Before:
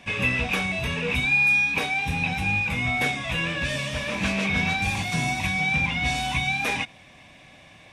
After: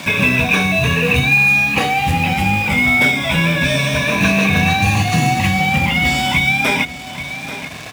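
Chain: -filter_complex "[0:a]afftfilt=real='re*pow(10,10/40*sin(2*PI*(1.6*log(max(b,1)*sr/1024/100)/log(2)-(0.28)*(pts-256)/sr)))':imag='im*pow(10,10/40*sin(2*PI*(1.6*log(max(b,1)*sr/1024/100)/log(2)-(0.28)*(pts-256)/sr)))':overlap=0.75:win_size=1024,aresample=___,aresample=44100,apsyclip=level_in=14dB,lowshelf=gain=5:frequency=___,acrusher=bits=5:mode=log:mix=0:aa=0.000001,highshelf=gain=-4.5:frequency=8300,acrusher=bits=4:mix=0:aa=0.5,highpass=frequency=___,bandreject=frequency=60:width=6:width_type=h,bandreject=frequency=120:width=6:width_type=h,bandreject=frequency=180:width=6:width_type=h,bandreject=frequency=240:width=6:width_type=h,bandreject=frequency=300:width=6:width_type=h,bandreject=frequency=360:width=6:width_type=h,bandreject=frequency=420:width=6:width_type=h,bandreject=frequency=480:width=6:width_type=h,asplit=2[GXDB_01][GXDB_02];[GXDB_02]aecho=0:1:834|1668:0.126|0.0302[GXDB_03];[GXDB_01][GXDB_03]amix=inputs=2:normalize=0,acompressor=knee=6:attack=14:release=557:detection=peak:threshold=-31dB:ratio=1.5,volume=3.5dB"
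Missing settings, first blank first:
32000, 350, 92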